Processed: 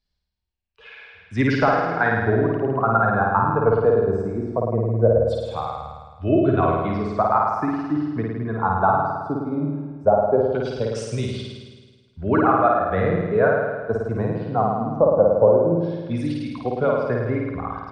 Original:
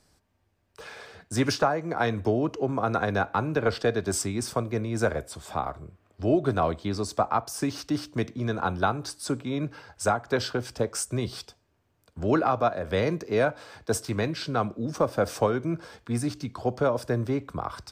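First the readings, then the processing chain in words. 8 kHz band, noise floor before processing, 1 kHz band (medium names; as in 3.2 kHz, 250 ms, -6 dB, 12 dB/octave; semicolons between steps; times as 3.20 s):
under -10 dB, -70 dBFS, +8.0 dB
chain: expander on every frequency bin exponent 1.5; LFO low-pass saw down 0.19 Hz 540–3900 Hz; dynamic bell 2.4 kHz, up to -4 dB, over -46 dBFS, Q 1.5; flutter echo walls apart 9.2 m, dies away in 1.4 s; trim +4.5 dB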